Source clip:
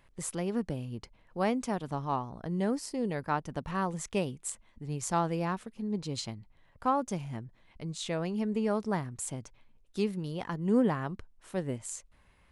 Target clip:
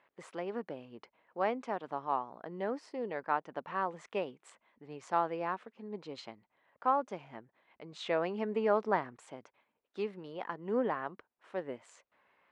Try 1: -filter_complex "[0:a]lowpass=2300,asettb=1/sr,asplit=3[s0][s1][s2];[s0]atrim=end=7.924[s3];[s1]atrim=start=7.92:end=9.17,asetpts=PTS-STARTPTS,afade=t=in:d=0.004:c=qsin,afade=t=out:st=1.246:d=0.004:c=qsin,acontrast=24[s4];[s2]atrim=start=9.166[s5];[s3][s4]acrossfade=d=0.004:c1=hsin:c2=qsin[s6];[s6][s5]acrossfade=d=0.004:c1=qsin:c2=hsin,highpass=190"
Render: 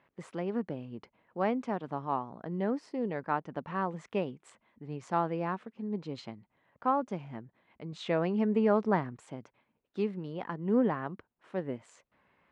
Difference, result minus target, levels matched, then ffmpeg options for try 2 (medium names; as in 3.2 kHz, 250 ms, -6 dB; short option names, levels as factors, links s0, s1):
250 Hz band +6.0 dB
-filter_complex "[0:a]lowpass=2300,asettb=1/sr,asplit=3[s0][s1][s2];[s0]atrim=end=7.924[s3];[s1]atrim=start=7.92:end=9.17,asetpts=PTS-STARTPTS,afade=t=in:d=0.004:c=qsin,afade=t=out:st=1.246:d=0.004:c=qsin,acontrast=24[s4];[s2]atrim=start=9.166[s5];[s3][s4]acrossfade=d=0.004:c1=hsin:c2=qsin[s6];[s6][s5]acrossfade=d=0.004:c1=qsin:c2=hsin,highpass=430"